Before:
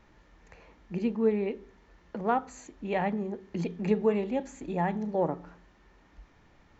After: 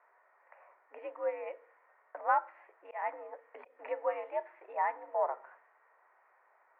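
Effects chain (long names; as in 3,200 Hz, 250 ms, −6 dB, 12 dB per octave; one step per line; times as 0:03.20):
low-pass that shuts in the quiet parts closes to 1,600 Hz, open at −26 dBFS
single-sideband voice off tune +80 Hz 540–2,100 Hz
0:02.34–0:03.79: volume swells 195 ms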